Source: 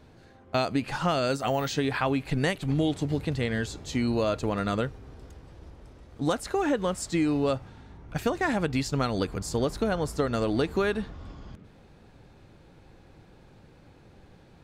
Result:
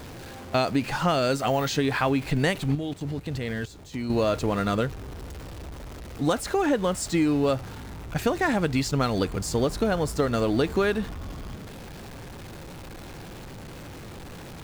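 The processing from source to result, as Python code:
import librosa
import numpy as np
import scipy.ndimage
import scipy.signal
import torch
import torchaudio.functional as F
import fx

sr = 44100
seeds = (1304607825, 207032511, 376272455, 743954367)

y = x + 0.5 * 10.0 ** (-39.0 / 20.0) * np.sign(x)
y = fx.level_steps(y, sr, step_db=16, at=(2.75, 4.1))
y = y * 10.0 ** (2.0 / 20.0)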